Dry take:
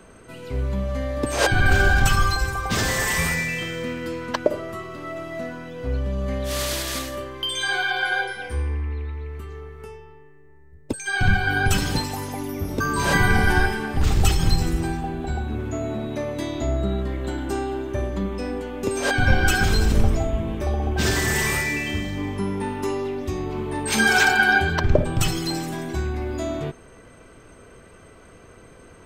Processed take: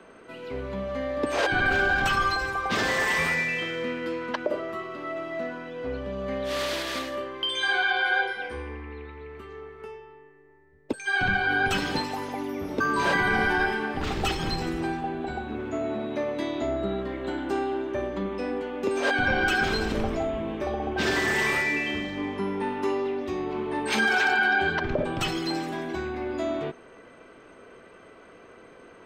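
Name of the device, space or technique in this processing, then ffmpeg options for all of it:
DJ mixer with the lows and highs turned down: -filter_complex "[0:a]acrossover=split=210 4400:gain=0.158 1 0.178[a][b][c];[a][b][c]amix=inputs=3:normalize=0,alimiter=limit=-14.5dB:level=0:latency=1:release=39"

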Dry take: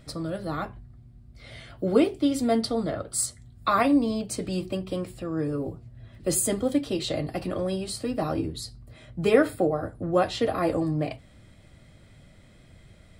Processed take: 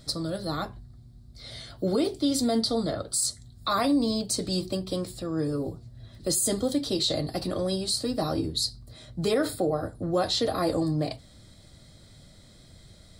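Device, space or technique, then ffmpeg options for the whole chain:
over-bright horn tweeter: -af "highshelf=f=3.3k:t=q:w=3:g=6.5,alimiter=limit=-16.5dB:level=0:latency=1:release=27"

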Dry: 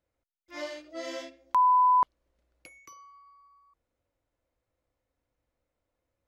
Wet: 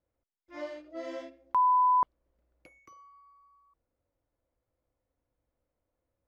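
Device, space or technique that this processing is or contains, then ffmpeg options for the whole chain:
through cloth: -af "highshelf=f=2.5k:g=-16"

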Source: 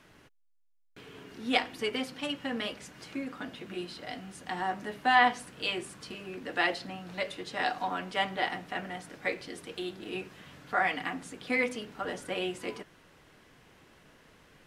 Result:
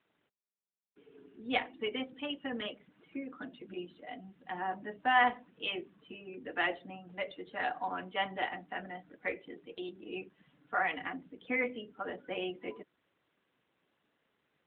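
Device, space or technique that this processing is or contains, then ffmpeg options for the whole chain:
mobile call with aggressive noise cancelling: -af "highpass=170,afftdn=nr=14:nf=-41,volume=-3dB" -ar 8000 -c:a libopencore_amrnb -b:a 12200

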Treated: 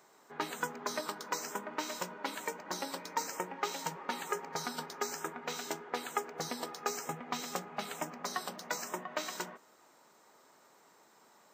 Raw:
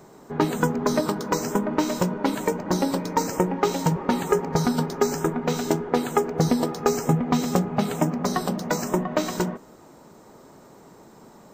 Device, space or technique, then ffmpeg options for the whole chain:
filter by subtraction: -filter_complex "[0:a]asplit=2[a][b];[b]lowpass=1.9k,volume=-1[c];[a][c]amix=inputs=2:normalize=0,volume=-8dB"

